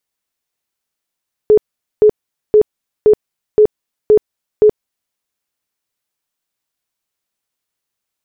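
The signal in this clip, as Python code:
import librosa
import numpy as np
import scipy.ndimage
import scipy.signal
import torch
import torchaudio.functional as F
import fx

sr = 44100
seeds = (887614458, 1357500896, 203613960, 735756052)

y = fx.tone_burst(sr, hz=425.0, cycles=32, every_s=0.52, bursts=7, level_db=-4.0)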